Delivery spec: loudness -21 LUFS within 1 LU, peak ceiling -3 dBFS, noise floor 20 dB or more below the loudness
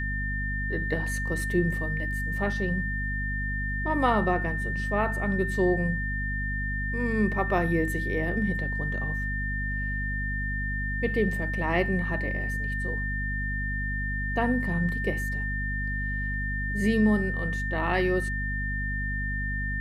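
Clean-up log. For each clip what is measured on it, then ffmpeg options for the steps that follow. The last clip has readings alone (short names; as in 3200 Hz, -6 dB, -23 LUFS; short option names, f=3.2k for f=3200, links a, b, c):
hum 50 Hz; harmonics up to 250 Hz; hum level -29 dBFS; steady tone 1800 Hz; tone level -31 dBFS; loudness -28.0 LUFS; peak -11.0 dBFS; loudness target -21.0 LUFS
-> -af "bandreject=f=50:t=h:w=4,bandreject=f=100:t=h:w=4,bandreject=f=150:t=h:w=4,bandreject=f=200:t=h:w=4,bandreject=f=250:t=h:w=4"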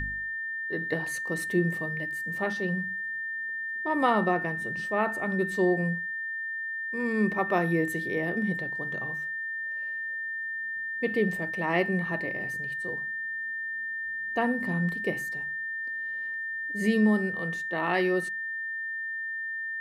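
hum none; steady tone 1800 Hz; tone level -31 dBFS
-> -af "bandreject=f=1.8k:w=30"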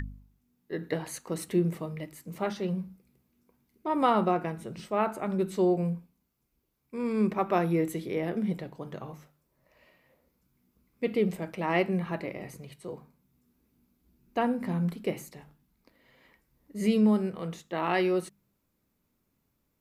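steady tone none; loudness -30.0 LUFS; peak -11.0 dBFS; loudness target -21.0 LUFS
-> -af "volume=9dB,alimiter=limit=-3dB:level=0:latency=1"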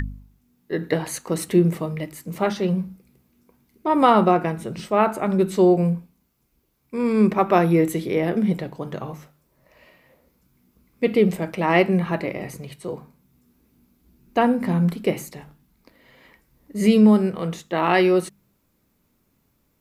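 loudness -21.0 LUFS; peak -3.0 dBFS; noise floor -67 dBFS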